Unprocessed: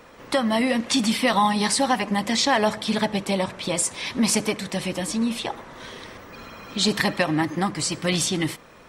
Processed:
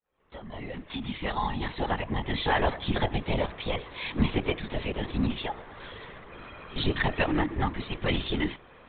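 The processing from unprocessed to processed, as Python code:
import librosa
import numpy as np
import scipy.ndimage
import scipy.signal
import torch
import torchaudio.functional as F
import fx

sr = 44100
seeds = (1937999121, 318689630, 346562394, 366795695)

y = fx.fade_in_head(x, sr, length_s=2.91)
y = fx.lpc_vocoder(y, sr, seeds[0], excitation='whisper', order=16)
y = y * 10.0 ** (-3.5 / 20.0)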